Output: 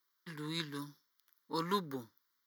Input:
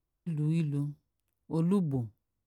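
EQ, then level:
high-pass filter 1,000 Hz 12 dB per octave
phaser with its sweep stopped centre 2,600 Hz, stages 6
+16.0 dB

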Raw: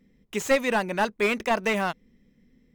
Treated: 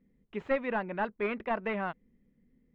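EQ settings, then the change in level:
dynamic equaliser 1,600 Hz, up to +3 dB, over −33 dBFS, Q 0.88
high-frequency loss of the air 430 metres
high-shelf EQ 5,400 Hz −10 dB
−6.5 dB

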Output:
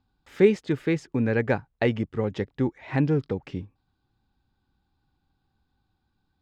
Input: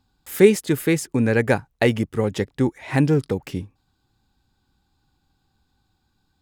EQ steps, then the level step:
high-frequency loss of the air 170 metres
−4.5 dB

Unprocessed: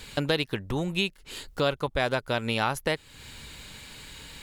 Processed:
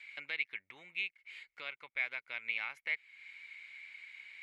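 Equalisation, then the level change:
resonant band-pass 2,200 Hz, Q 18
+8.0 dB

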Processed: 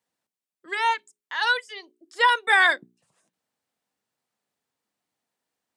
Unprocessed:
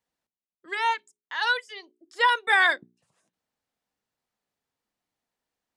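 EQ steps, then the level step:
high-pass filter 110 Hz
parametric band 8,500 Hz +3.5 dB 0.39 octaves
+2.0 dB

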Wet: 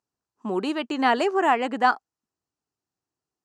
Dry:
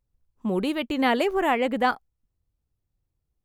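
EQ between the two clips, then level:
loudspeaker in its box 360–7,800 Hz, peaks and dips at 530 Hz −10 dB, 2,200 Hz −9 dB, 3,500 Hz −10 dB
+5.0 dB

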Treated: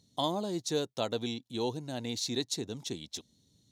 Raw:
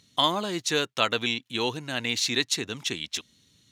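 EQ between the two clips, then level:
bass and treble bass +1 dB, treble +5 dB
flat-topped bell 1,800 Hz −11.5 dB
high-shelf EQ 2,400 Hz −10 dB
−3.0 dB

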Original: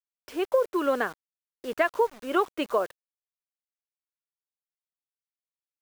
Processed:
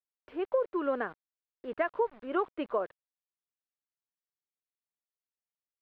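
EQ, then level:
high-frequency loss of the air 450 metres
high-shelf EQ 7,900 Hz −5 dB
notch filter 5,300 Hz, Q 16
−4.0 dB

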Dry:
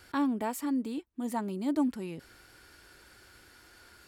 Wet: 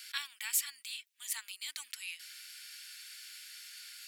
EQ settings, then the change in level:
inverse Chebyshev high-pass filter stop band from 500 Hz, stop band 70 dB
+11.5 dB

